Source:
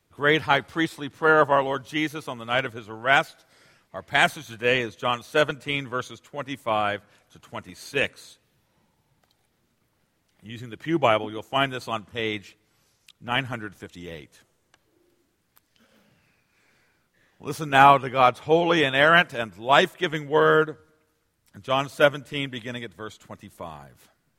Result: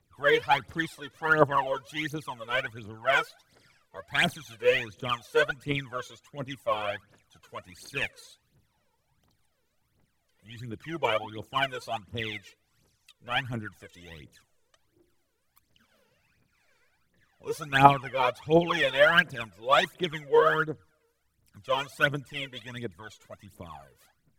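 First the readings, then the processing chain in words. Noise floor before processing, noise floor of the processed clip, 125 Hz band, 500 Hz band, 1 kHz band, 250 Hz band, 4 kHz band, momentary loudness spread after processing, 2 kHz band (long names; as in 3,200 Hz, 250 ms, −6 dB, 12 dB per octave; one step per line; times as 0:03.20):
−70 dBFS, −74 dBFS, −3.0 dB, −4.0 dB, −5.0 dB, −6.0 dB, −4.0 dB, 19 LU, −4.0 dB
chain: phase shifter 1.4 Hz, delay 2.3 ms, feedback 78%
level −8.5 dB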